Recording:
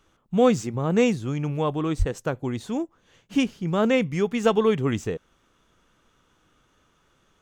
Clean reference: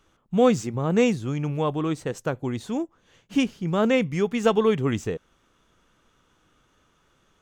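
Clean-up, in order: 1.98–2.10 s: high-pass 140 Hz 24 dB/octave

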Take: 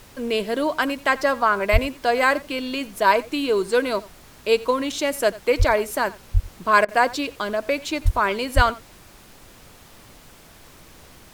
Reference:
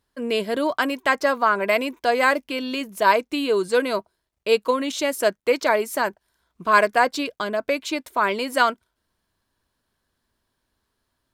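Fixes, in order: de-plosive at 1.72/5.58/6.33/8.04/8.55 s; interpolate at 6.85 s, 33 ms; noise print and reduce 28 dB; inverse comb 88 ms -20 dB

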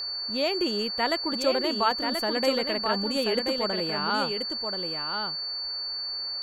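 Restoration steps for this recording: band-stop 4.5 kHz, Q 30; noise print and reduce 30 dB; inverse comb 1032 ms -5.5 dB

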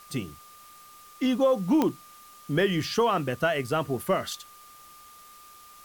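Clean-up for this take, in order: de-click; band-stop 1.2 kHz, Q 30; noise reduction 21 dB, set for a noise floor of -50 dBFS

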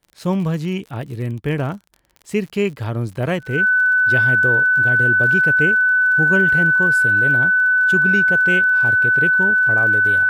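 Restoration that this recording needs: de-click; band-stop 1.5 kHz, Q 30

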